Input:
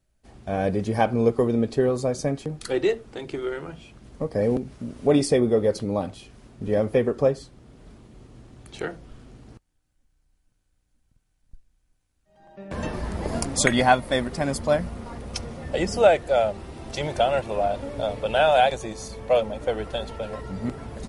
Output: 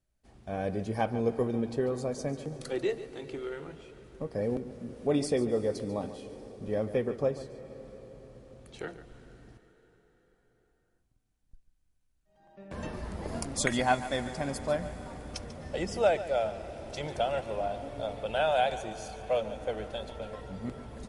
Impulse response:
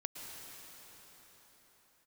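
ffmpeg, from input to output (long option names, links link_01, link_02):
-filter_complex "[0:a]asplit=2[link_01][link_02];[1:a]atrim=start_sample=2205,adelay=143[link_03];[link_02][link_03]afir=irnorm=-1:irlink=0,volume=-10.5dB[link_04];[link_01][link_04]amix=inputs=2:normalize=0,volume=-8.5dB"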